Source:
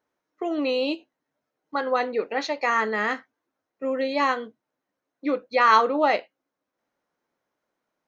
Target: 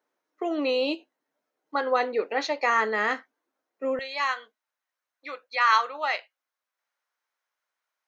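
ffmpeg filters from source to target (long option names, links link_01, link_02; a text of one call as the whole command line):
ffmpeg -i in.wav -af "asetnsamples=nb_out_samples=441:pad=0,asendcmd='3.99 highpass f 1200',highpass=270" out.wav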